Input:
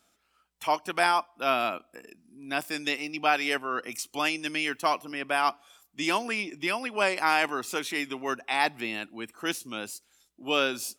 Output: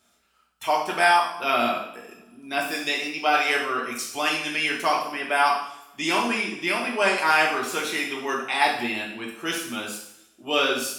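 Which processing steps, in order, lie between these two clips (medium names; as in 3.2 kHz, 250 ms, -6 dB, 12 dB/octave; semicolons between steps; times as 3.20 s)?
two-slope reverb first 0.69 s, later 2.1 s, from -26 dB, DRR -3 dB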